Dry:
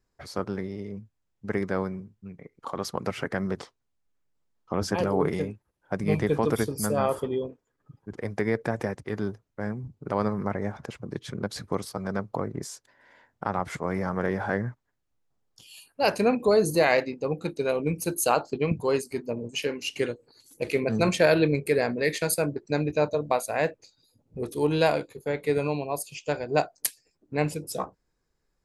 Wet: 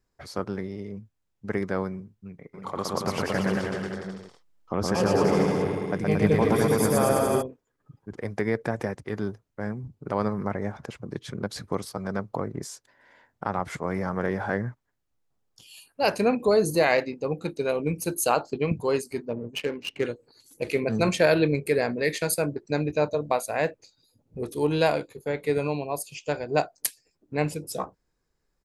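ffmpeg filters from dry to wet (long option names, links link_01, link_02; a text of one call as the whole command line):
ffmpeg -i in.wav -filter_complex "[0:a]asplit=3[link_01][link_02][link_03];[link_01]afade=type=out:start_time=2.53:duration=0.02[link_04];[link_02]aecho=1:1:120|228|325.2|412.7|491.4|562.3|626|683.4|735.1:0.794|0.631|0.501|0.398|0.316|0.251|0.2|0.158|0.126,afade=type=in:start_time=2.53:duration=0.02,afade=type=out:start_time=7.41:duration=0.02[link_05];[link_03]afade=type=in:start_time=7.41:duration=0.02[link_06];[link_04][link_05][link_06]amix=inputs=3:normalize=0,asettb=1/sr,asplit=3[link_07][link_08][link_09];[link_07]atrim=end=19.254[link_10];[link_08]atrim=start=19.25:end=20.05,asetpts=PTS-STARTPTS,afade=type=in:duration=0.004:curve=qsin,afade=type=out:start_time=0.796:duration=0.004:curve=qsin,adynamicsmooth=sensitivity=3.5:basefreq=1300[link_11];[link_09]atrim=start=20.046[link_12];[link_10][link_11]acrossfade=duration=0.004:curve1=hsin:curve2=qsin[link_13];[link_13][link_12]acrossfade=duration=0.004:curve1=qsin:curve2=hsin" out.wav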